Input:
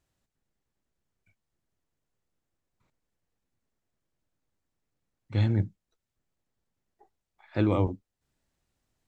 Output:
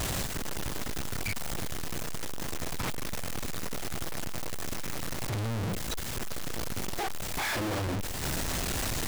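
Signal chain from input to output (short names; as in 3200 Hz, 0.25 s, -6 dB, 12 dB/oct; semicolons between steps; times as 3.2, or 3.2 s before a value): infinite clipping; in parallel at -2 dB: level quantiser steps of 9 dB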